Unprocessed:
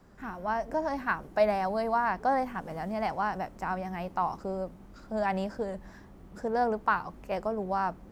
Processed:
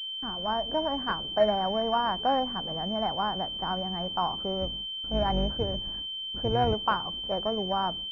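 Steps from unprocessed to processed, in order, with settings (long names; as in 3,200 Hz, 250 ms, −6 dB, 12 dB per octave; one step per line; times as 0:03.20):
0:04.61–0:06.74: sub-octave generator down 2 octaves, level +3 dB
noise gate with hold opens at −37 dBFS
switching amplifier with a slow clock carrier 3,100 Hz
level +1.5 dB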